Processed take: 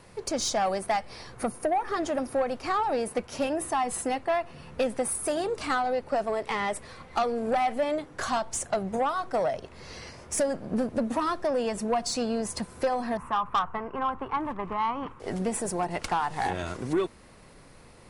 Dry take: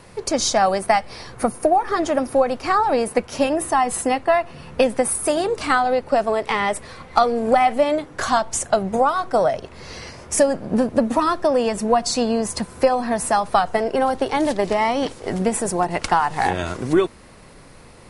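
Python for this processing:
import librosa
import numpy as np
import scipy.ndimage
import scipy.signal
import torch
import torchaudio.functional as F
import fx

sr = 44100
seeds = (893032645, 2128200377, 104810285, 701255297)

y = fx.curve_eq(x, sr, hz=(140.0, 660.0, 1100.0, 1700.0, 2700.0, 4400.0), db=(0, -11, 11, -4, -7, -26), at=(13.17, 15.2))
y = 10.0 ** (-12.0 / 20.0) * np.tanh(y / 10.0 ** (-12.0 / 20.0))
y = F.gain(torch.from_numpy(y), -7.0).numpy()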